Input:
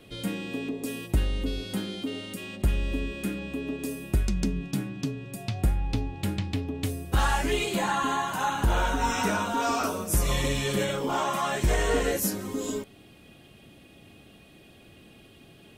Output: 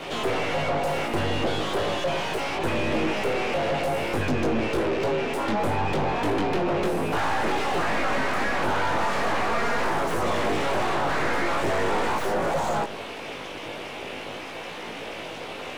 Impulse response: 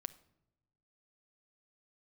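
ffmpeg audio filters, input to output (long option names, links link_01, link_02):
-filter_complex "[0:a]aeval=exprs='abs(val(0))':channel_layout=same,flanger=delay=18:depth=2.5:speed=0.4,acrossover=split=280|1800[link_01][link_02][link_03];[link_01]acompressor=threshold=-31dB:ratio=4[link_04];[link_02]acompressor=threshold=-40dB:ratio=4[link_05];[link_03]acompressor=threshold=-50dB:ratio=4[link_06];[link_04][link_05][link_06]amix=inputs=3:normalize=0,asplit=2[link_07][link_08];[link_08]highpass=frequency=720:poles=1,volume=35dB,asoftclip=type=tanh:threshold=-19dB[link_09];[link_07][link_09]amix=inputs=2:normalize=0,lowpass=frequency=1100:poles=1,volume=-6dB,asplit=2[link_10][link_11];[1:a]atrim=start_sample=2205,asetrate=22050,aresample=44100[link_12];[link_11][link_12]afir=irnorm=-1:irlink=0,volume=-4.5dB[link_13];[link_10][link_13]amix=inputs=2:normalize=0"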